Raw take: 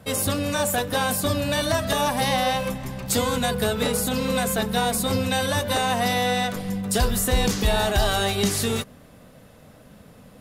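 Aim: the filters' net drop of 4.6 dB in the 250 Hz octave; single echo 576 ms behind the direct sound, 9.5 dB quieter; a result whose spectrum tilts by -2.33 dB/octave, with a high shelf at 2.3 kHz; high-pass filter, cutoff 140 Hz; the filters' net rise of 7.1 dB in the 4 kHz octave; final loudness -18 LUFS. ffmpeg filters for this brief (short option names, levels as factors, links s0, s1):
-af "highpass=140,equalizer=f=250:t=o:g=-5,highshelf=f=2300:g=4.5,equalizer=f=4000:t=o:g=4.5,aecho=1:1:576:0.335,volume=1.26"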